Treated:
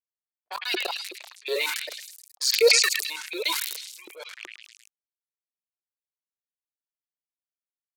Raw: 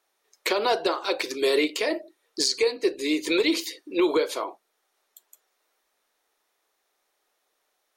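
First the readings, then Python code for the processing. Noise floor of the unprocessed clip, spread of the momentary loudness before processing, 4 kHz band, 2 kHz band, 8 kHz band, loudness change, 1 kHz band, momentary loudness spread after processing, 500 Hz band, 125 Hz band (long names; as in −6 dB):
−75 dBFS, 9 LU, +3.0 dB, +2.5 dB, +6.0 dB, +1.5 dB, −7.0 dB, 23 LU, −4.0 dB, can't be measured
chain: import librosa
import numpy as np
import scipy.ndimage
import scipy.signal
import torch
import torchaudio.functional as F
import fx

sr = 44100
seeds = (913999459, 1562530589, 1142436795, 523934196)

y = fx.level_steps(x, sr, step_db=24)
y = 10.0 ** (-20.5 / 20.0) * np.tanh(y / 10.0 ** (-20.5 / 20.0))
y = fx.spec_gate(y, sr, threshold_db=-30, keep='strong')
y = fx.hum_notches(y, sr, base_hz=50, count=6)
y = np.where(np.abs(y) >= 10.0 ** (-39.5 / 20.0), y, 0.0)
y = fx.filter_lfo_highpass(y, sr, shape='saw_up', hz=2.7, low_hz=330.0, high_hz=2700.0, q=5.4)
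y = fx.tilt_eq(y, sr, slope=4.0)
y = fx.notch(y, sr, hz=1200.0, q=21.0)
y = fx.auto_swell(y, sr, attack_ms=409.0)
y = fx.env_lowpass(y, sr, base_hz=580.0, full_db=-41.5)
y = fx.echo_stepped(y, sr, ms=106, hz=2500.0, octaves=0.7, feedback_pct=70, wet_db=-12)
y = fx.sustainer(y, sr, db_per_s=43.0)
y = y * librosa.db_to_amplitude(6.0)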